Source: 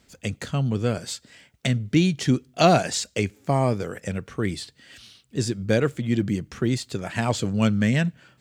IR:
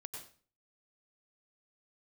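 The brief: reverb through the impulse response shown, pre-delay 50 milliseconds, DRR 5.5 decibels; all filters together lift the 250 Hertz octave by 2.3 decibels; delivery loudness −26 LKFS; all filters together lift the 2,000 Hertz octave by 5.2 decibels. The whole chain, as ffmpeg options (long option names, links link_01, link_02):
-filter_complex "[0:a]equalizer=frequency=250:width_type=o:gain=3,equalizer=frequency=2000:width_type=o:gain=6.5,asplit=2[link_01][link_02];[1:a]atrim=start_sample=2205,adelay=50[link_03];[link_02][link_03]afir=irnorm=-1:irlink=0,volume=-2dB[link_04];[link_01][link_04]amix=inputs=2:normalize=0,volume=-4.5dB"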